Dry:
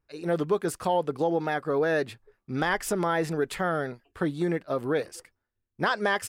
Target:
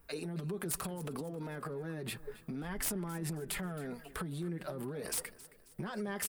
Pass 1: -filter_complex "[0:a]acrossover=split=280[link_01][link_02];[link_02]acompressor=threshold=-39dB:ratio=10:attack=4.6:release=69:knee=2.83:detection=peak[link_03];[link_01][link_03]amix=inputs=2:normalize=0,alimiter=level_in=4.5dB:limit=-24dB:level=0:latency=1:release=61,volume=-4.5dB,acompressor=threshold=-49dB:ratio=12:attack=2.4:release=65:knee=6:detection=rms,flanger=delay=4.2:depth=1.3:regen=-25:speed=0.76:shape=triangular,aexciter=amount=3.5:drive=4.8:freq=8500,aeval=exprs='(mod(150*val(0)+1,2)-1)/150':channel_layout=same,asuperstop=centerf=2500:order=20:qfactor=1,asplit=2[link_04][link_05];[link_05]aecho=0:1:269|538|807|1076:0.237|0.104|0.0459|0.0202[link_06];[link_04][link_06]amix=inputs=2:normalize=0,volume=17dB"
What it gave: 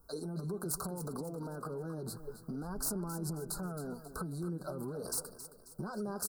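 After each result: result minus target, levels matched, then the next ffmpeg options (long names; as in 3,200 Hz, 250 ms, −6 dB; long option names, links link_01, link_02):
2,000 Hz band −8.0 dB; echo-to-direct +6 dB
-filter_complex "[0:a]acrossover=split=280[link_01][link_02];[link_02]acompressor=threshold=-39dB:ratio=10:attack=4.6:release=69:knee=2.83:detection=peak[link_03];[link_01][link_03]amix=inputs=2:normalize=0,alimiter=level_in=4.5dB:limit=-24dB:level=0:latency=1:release=61,volume=-4.5dB,acompressor=threshold=-49dB:ratio=12:attack=2.4:release=65:knee=6:detection=rms,flanger=delay=4.2:depth=1.3:regen=-25:speed=0.76:shape=triangular,aexciter=amount=3.5:drive=4.8:freq=8500,aeval=exprs='(mod(150*val(0)+1,2)-1)/150':channel_layout=same,asplit=2[link_04][link_05];[link_05]aecho=0:1:269|538|807|1076:0.237|0.104|0.0459|0.0202[link_06];[link_04][link_06]amix=inputs=2:normalize=0,volume=17dB"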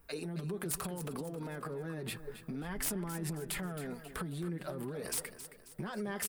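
echo-to-direct +6 dB
-filter_complex "[0:a]acrossover=split=280[link_01][link_02];[link_02]acompressor=threshold=-39dB:ratio=10:attack=4.6:release=69:knee=2.83:detection=peak[link_03];[link_01][link_03]amix=inputs=2:normalize=0,alimiter=level_in=4.5dB:limit=-24dB:level=0:latency=1:release=61,volume=-4.5dB,acompressor=threshold=-49dB:ratio=12:attack=2.4:release=65:knee=6:detection=rms,flanger=delay=4.2:depth=1.3:regen=-25:speed=0.76:shape=triangular,aexciter=amount=3.5:drive=4.8:freq=8500,aeval=exprs='(mod(150*val(0)+1,2)-1)/150':channel_layout=same,asplit=2[link_04][link_05];[link_05]aecho=0:1:269|538|807|1076:0.119|0.0523|0.023|0.0101[link_06];[link_04][link_06]amix=inputs=2:normalize=0,volume=17dB"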